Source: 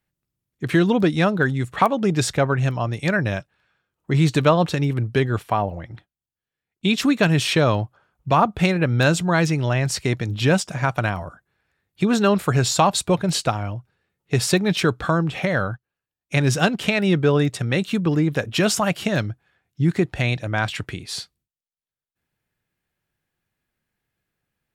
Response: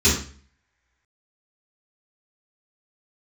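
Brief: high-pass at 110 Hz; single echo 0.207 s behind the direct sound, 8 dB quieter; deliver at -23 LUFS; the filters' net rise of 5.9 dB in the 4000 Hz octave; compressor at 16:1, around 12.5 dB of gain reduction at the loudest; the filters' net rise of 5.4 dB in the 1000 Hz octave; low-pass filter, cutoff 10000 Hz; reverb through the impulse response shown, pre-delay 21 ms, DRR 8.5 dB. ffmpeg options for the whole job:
-filter_complex "[0:a]highpass=110,lowpass=10k,equalizer=f=1k:t=o:g=6.5,equalizer=f=4k:t=o:g=7,acompressor=threshold=-19dB:ratio=16,aecho=1:1:207:0.398,asplit=2[a][b];[1:a]atrim=start_sample=2205,adelay=21[c];[b][c]afir=irnorm=-1:irlink=0,volume=-27dB[d];[a][d]amix=inputs=2:normalize=0"

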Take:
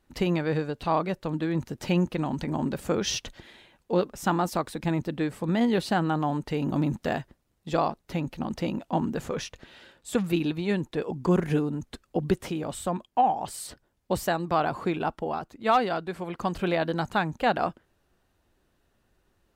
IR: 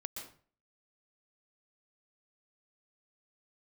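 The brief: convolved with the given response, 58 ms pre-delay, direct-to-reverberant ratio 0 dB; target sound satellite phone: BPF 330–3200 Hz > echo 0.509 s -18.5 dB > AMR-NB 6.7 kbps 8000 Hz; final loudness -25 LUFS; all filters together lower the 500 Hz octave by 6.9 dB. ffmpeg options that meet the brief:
-filter_complex "[0:a]equalizer=f=500:t=o:g=-8,asplit=2[a][b];[1:a]atrim=start_sample=2205,adelay=58[c];[b][c]afir=irnorm=-1:irlink=0,volume=1.5dB[d];[a][d]amix=inputs=2:normalize=0,highpass=330,lowpass=3.2k,aecho=1:1:509:0.119,volume=7.5dB" -ar 8000 -c:a libopencore_amrnb -b:a 6700

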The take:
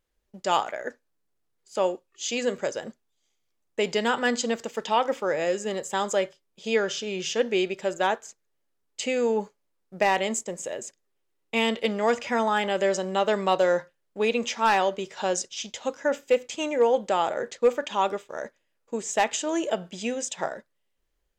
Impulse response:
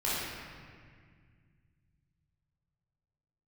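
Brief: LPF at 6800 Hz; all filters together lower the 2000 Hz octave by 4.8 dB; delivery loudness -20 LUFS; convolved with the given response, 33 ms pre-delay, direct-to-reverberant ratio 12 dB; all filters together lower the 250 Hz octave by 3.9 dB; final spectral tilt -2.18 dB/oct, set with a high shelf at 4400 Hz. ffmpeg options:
-filter_complex "[0:a]lowpass=6.8k,equalizer=f=250:t=o:g=-5,equalizer=f=2k:t=o:g=-8,highshelf=f=4.4k:g=8,asplit=2[a][b];[1:a]atrim=start_sample=2205,adelay=33[c];[b][c]afir=irnorm=-1:irlink=0,volume=-21dB[d];[a][d]amix=inputs=2:normalize=0,volume=8dB"

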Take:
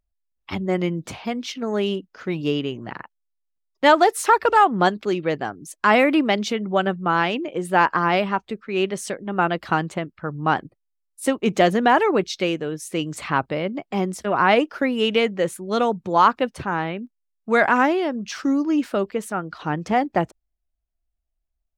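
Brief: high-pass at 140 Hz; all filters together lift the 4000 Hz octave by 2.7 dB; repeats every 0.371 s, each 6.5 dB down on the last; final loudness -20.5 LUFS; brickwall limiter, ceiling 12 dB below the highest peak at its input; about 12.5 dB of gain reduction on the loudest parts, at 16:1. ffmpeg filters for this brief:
-af "highpass=140,equalizer=f=4k:t=o:g=4,acompressor=threshold=-22dB:ratio=16,alimiter=limit=-20.5dB:level=0:latency=1,aecho=1:1:371|742|1113|1484|1855|2226:0.473|0.222|0.105|0.0491|0.0231|0.0109,volume=10dB"

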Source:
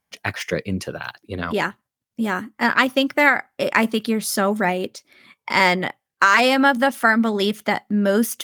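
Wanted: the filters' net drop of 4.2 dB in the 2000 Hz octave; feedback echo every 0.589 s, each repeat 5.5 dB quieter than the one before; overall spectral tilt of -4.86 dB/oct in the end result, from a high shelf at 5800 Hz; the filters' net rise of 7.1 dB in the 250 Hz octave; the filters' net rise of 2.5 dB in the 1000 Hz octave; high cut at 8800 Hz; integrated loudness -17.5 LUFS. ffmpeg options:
-af "lowpass=8.8k,equalizer=f=250:t=o:g=8,equalizer=f=1k:t=o:g=4.5,equalizer=f=2k:t=o:g=-8,highshelf=f=5.8k:g=9,aecho=1:1:589|1178|1767|2356|2945|3534|4123:0.531|0.281|0.149|0.079|0.0419|0.0222|0.0118,volume=-1.5dB"

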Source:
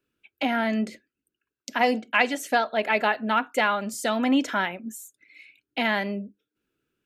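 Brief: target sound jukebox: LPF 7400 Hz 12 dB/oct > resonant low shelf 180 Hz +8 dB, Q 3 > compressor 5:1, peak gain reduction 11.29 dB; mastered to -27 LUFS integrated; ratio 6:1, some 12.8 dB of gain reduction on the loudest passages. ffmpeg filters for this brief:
-af "acompressor=threshold=-31dB:ratio=6,lowpass=7.4k,lowshelf=f=180:t=q:w=3:g=8,acompressor=threshold=-40dB:ratio=5,volume=17.5dB"

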